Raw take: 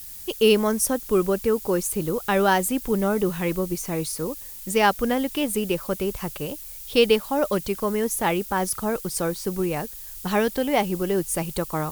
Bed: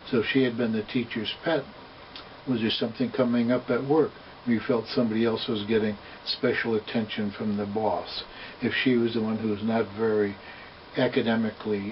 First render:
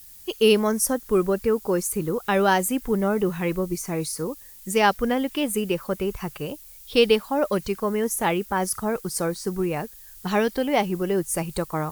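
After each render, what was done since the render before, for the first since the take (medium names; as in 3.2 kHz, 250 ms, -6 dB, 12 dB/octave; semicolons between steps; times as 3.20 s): noise print and reduce 7 dB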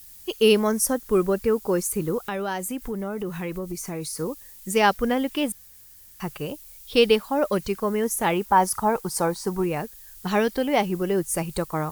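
2.28–4.15 s: compression 2.5:1, threshold -29 dBFS; 5.52–6.20 s: room tone; 8.33–9.64 s: peaking EQ 890 Hz +11.5 dB 0.58 oct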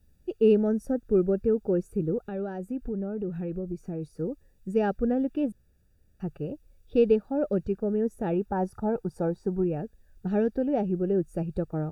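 boxcar filter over 42 samples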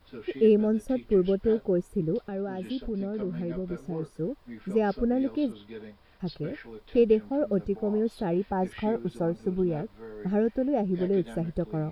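add bed -18 dB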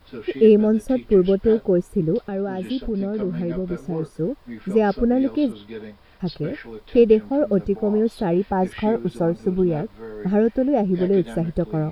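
trim +7 dB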